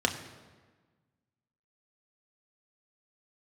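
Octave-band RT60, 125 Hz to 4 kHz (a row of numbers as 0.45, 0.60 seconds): 1.8, 1.7, 1.4, 1.4, 1.2, 1.0 seconds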